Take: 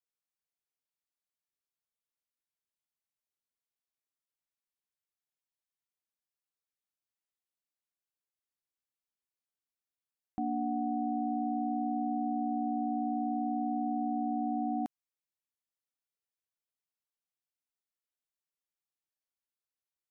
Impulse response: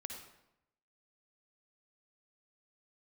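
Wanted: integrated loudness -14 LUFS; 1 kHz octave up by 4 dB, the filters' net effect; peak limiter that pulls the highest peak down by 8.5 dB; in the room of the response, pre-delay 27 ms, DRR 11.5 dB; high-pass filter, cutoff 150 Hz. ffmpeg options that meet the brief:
-filter_complex "[0:a]highpass=150,equalizer=f=1000:t=o:g=7,alimiter=level_in=2.37:limit=0.0631:level=0:latency=1,volume=0.422,asplit=2[s0][s1];[1:a]atrim=start_sample=2205,adelay=27[s2];[s1][s2]afir=irnorm=-1:irlink=0,volume=0.355[s3];[s0][s3]amix=inputs=2:normalize=0,volume=15"

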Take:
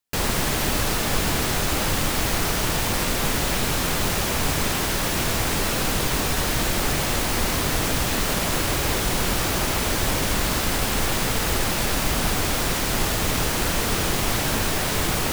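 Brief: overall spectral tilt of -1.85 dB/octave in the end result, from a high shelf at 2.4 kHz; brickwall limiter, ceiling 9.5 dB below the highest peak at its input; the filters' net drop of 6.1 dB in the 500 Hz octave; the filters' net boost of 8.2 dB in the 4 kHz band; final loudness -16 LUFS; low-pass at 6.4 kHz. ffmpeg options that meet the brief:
-af "lowpass=6400,equalizer=f=500:t=o:g=-8.5,highshelf=f=2400:g=4,equalizer=f=4000:t=o:g=7.5,volume=2.82,alimiter=limit=0.376:level=0:latency=1"

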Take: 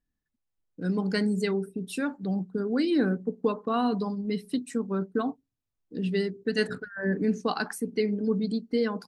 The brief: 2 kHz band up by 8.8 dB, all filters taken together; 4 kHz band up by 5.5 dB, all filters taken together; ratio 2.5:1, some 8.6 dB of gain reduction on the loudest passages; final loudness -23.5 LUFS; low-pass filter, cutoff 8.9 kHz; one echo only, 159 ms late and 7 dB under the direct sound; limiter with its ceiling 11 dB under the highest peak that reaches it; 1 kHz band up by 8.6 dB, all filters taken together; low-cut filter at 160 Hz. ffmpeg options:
-af "highpass=160,lowpass=8900,equalizer=f=1000:t=o:g=9,equalizer=f=2000:t=o:g=7,equalizer=f=4000:t=o:g=4,acompressor=threshold=0.0316:ratio=2.5,alimiter=level_in=1.33:limit=0.0631:level=0:latency=1,volume=0.75,aecho=1:1:159:0.447,volume=3.98"

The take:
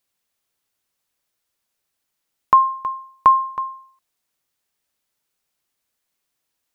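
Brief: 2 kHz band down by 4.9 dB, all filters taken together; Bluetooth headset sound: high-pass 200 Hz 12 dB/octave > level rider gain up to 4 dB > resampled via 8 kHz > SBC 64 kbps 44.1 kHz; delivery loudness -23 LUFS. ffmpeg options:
-af "highpass=200,equalizer=f=2000:t=o:g=-7,dynaudnorm=m=1.58,aresample=8000,aresample=44100,volume=0.75" -ar 44100 -c:a sbc -b:a 64k

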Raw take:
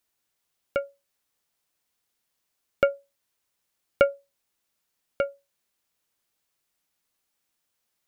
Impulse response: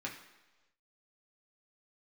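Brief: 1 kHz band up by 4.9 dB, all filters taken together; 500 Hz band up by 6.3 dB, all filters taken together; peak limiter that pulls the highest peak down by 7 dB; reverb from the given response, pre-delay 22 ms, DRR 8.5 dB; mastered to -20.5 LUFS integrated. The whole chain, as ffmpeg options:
-filter_complex "[0:a]equalizer=f=500:t=o:g=4.5,equalizer=f=1000:t=o:g=8.5,alimiter=limit=0.473:level=0:latency=1,asplit=2[s0][s1];[1:a]atrim=start_sample=2205,adelay=22[s2];[s1][s2]afir=irnorm=-1:irlink=0,volume=0.316[s3];[s0][s3]amix=inputs=2:normalize=0,volume=1.78"

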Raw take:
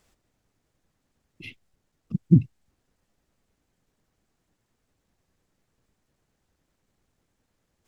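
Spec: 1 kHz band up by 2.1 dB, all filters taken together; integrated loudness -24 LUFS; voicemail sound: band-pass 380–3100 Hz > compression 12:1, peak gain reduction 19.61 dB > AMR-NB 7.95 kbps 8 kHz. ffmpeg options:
-af "highpass=380,lowpass=3100,equalizer=f=1000:t=o:g=3,acompressor=threshold=0.00891:ratio=12,volume=21.1" -ar 8000 -c:a libopencore_amrnb -b:a 7950

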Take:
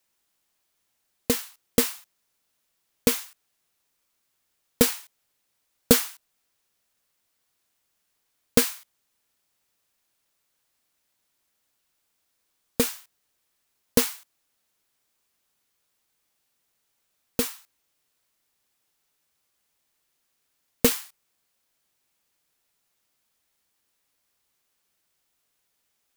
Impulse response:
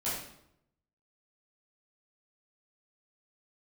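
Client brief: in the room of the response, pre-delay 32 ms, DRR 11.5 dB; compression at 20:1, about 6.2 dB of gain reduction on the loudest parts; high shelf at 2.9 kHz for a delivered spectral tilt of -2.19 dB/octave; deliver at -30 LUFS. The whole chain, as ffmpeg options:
-filter_complex "[0:a]highshelf=f=2900:g=5,acompressor=threshold=0.141:ratio=20,asplit=2[s0][s1];[1:a]atrim=start_sample=2205,adelay=32[s2];[s1][s2]afir=irnorm=-1:irlink=0,volume=0.141[s3];[s0][s3]amix=inputs=2:normalize=0,volume=0.708"

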